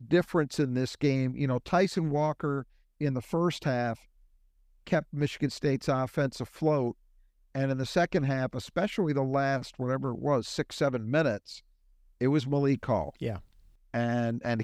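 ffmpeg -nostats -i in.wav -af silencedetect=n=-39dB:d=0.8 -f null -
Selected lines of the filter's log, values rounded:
silence_start: 3.95
silence_end: 4.87 | silence_duration: 0.92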